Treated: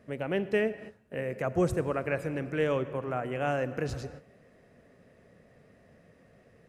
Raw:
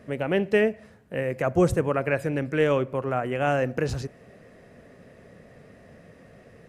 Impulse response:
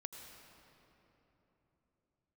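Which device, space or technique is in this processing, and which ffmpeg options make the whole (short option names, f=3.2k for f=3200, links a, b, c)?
keyed gated reverb: -filter_complex "[0:a]asplit=3[a][b][c];[1:a]atrim=start_sample=2205[d];[b][d]afir=irnorm=-1:irlink=0[e];[c]apad=whole_len=294827[f];[e][f]sidechaingate=range=-22dB:threshold=-44dB:ratio=16:detection=peak,volume=-3dB[g];[a][g]amix=inputs=2:normalize=0,volume=-9dB"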